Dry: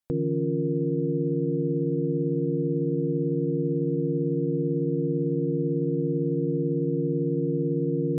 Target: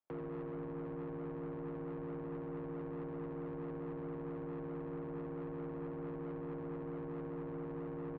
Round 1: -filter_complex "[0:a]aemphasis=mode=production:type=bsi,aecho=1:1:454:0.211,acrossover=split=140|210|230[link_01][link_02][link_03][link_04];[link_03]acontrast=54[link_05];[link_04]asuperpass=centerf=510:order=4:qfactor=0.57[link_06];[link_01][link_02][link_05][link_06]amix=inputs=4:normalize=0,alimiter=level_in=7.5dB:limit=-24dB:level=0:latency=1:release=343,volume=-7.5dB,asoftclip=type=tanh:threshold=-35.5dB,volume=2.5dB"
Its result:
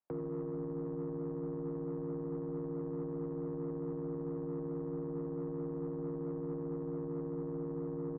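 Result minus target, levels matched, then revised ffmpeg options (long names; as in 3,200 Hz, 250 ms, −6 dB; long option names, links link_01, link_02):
soft clipping: distortion −7 dB
-filter_complex "[0:a]aemphasis=mode=production:type=bsi,aecho=1:1:454:0.211,acrossover=split=140|210|230[link_01][link_02][link_03][link_04];[link_03]acontrast=54[link_05];[link_04]asuperpass=centerf=510:order=4:qfactor=0.57[link_06];[link_01][link_02][link_05][link_06]amix=inputs=4:normalize=0,alimiter=level_in=7.5dB:limit=-24dB:level=0:latency=1:release=343,volume=-7.5dB,asoftclip=type=tanh:threshold=-42.5dB,volume=2.5dB"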